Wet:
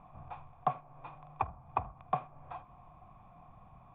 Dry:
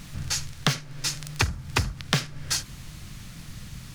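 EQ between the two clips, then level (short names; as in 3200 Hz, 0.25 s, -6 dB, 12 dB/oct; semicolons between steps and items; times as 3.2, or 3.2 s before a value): vocal tract filter a; air absorption 260 m; bell 3300 Hz +7.5 dB 0.84 oct; +10.0 dB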